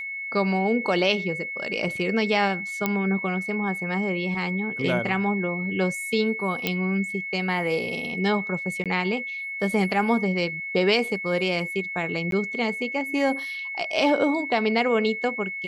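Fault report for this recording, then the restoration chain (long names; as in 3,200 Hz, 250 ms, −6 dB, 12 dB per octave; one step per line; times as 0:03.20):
whistle 2,200 Hz −30 dBFS
0:02.86: click −9 dBFS
0:06.67: click −9 dBFS
0:08.84–0:08.86: drop-out 17 ms
0:12.31–0:12.32: drop-out 12 ms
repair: click removal
notch filter 2,200 Hz, Q 30
repair the gap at 0:08.84, 17 ms
repair the gap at 0:12.31, 12 ms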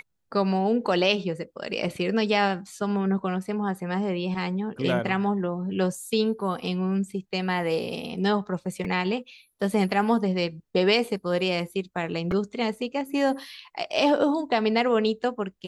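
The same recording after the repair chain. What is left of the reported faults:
none of them is left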